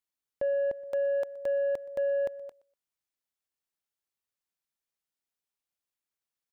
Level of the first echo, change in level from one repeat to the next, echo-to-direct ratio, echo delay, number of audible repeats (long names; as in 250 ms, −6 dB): −22.0 dB, −12.5 dB, −22.0 dB, 122 ms, 2